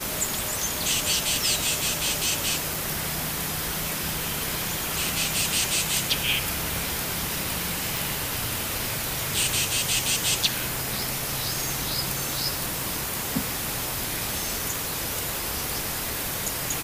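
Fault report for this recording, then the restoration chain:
tick 45 rpm
7.97 pop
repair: de-click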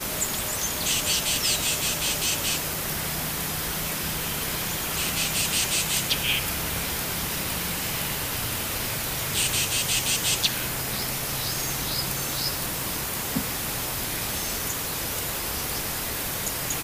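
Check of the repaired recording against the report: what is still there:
none

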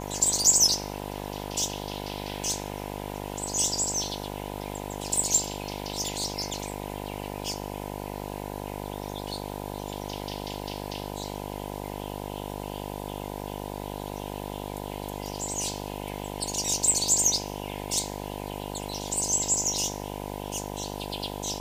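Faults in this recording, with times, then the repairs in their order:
buzz 50 Hz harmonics 20 -36 dBFS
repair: de-hum 50 Hz, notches 20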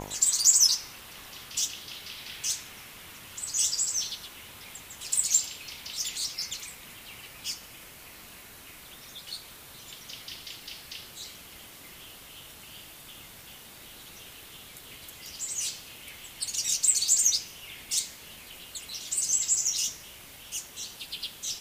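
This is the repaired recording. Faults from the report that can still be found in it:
none

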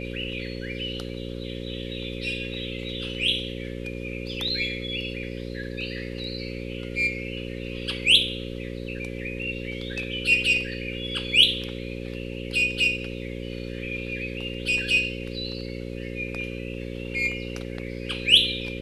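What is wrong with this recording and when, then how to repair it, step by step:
buzz 60 Hz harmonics 9 -34 dBFS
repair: de-hum 60 Hz, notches 9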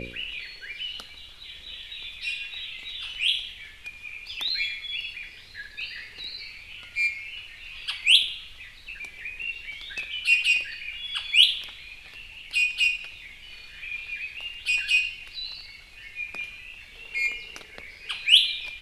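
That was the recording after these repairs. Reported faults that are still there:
none

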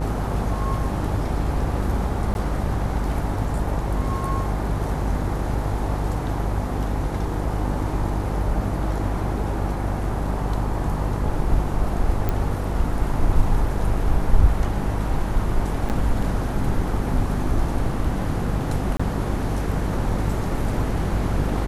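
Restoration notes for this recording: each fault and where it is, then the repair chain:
buzz 50 Hz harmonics 25 -26 dBFS
2.34–2.35 gap 11 ms
12.29 pop -11 dBFS
15.89–15.9 gap 8.8 ms
18.97–19 gap 25 ms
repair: de-click; de-hum 50 Hz, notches 25; interpolate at 2.34, 11 ms; interpolate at 15.89, 8.8 ms; interpolate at 18.97, 25 ms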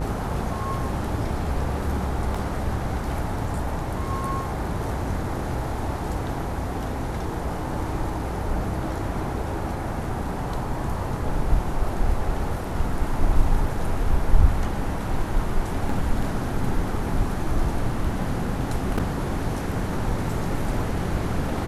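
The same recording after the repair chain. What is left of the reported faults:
none

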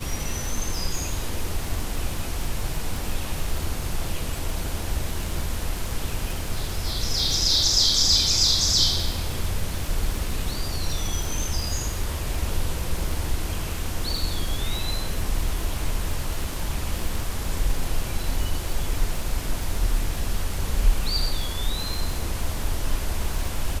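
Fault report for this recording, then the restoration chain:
crackle 46/s -27 dBFS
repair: de-click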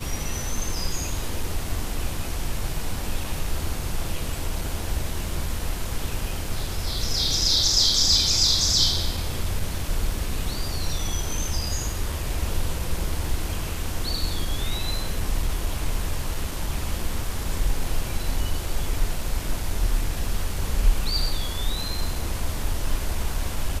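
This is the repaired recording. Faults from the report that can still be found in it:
none

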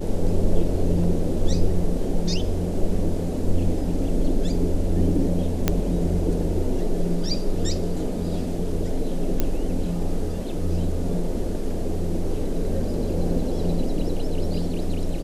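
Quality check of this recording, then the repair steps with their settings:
5.68 pop -5 dBFS
9.4 pop -8 dBFS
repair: de-click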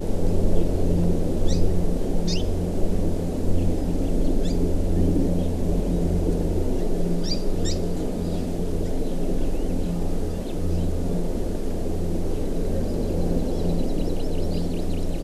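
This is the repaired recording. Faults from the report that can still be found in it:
none

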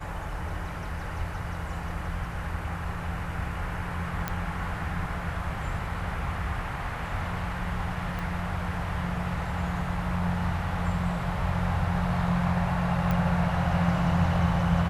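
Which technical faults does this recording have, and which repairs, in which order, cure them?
4.28 pop -14 dBFS
8.19 pop
13.11 pop -16 dBFS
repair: de-click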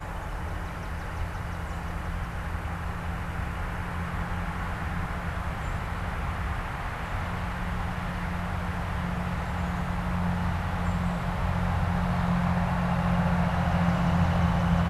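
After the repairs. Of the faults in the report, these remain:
8.19 pop

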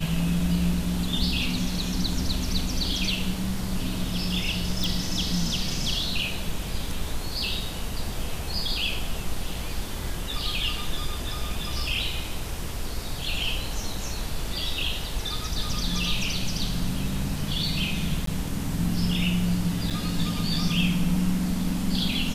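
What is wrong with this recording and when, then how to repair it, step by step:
4.84 pop
18.26–18.27 gap 13 ms
19.9–19.91 gap 6.9 ms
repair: de-click; interpolate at 18.26, 13 ms; interpolate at 19.9, 6.9 ms

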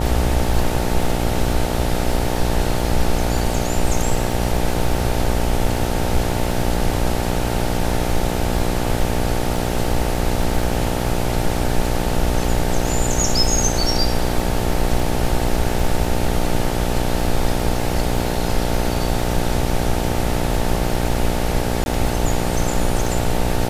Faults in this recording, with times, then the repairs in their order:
buzz 60 Hz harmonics 15 -23 dBFS
crackle 20/s -25 dBFS
21.84–21.86 gap 21 ms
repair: de-click; de-hum 60 Hz, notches 15; interpolate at 21.84, 21 ms

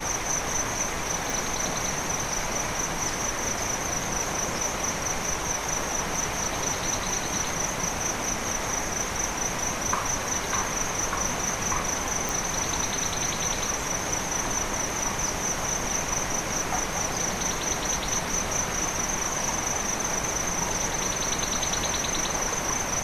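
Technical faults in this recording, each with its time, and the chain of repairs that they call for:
1.3 pop
12.29 pop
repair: de-click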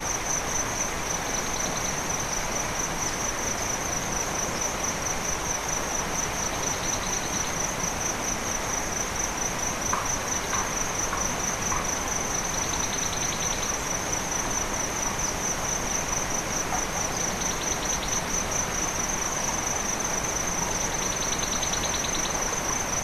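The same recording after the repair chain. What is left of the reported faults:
none

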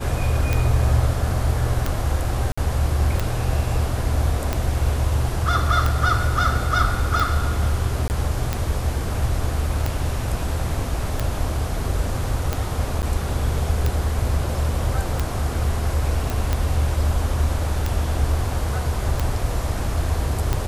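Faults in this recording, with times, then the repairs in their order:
tick 45 rpm
2.52–2.58 gap 55 ms
8.08–8.1 gap 19 ms
13.02–13.03 gap 8.7 ms
16.3 pop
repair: de-click; interpolate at 2.52, 55 ms; interpolate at 8.08, 19 ms; interpolate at 13.02, 8.7 ms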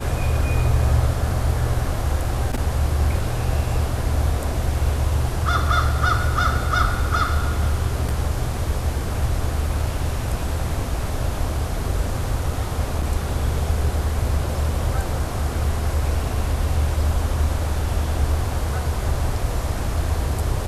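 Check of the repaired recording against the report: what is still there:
none

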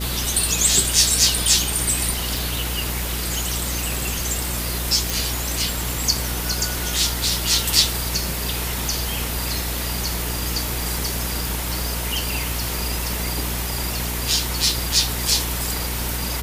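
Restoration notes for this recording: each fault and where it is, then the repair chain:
hum 60 Hz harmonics 8 -28 dBFS
2.37 pop
5.1 pop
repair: de-click; de-hum 60 Hz, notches 8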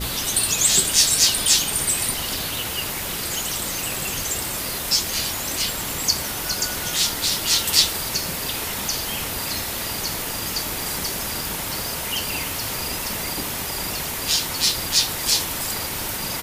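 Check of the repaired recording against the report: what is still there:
none

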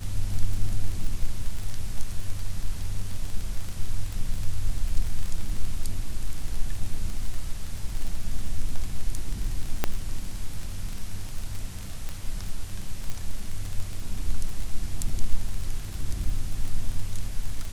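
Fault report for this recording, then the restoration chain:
crackle 28/s -28 dBFS
9.84 pop -8 dBFS
12.09 pop -20 dBFS
13.1 pop -18 dBFS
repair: de-click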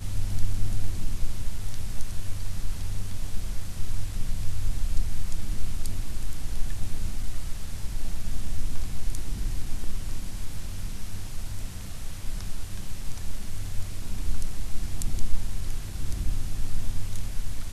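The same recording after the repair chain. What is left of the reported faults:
9.84 pop

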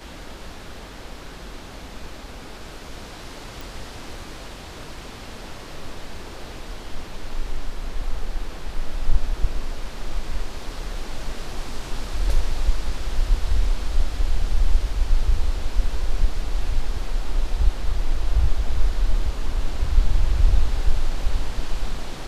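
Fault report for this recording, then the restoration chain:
3.61 pop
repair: de-click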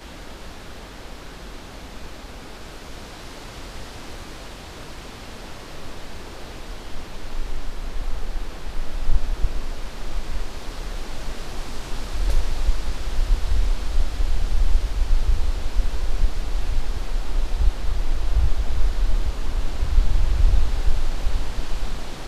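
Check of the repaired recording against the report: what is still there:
none

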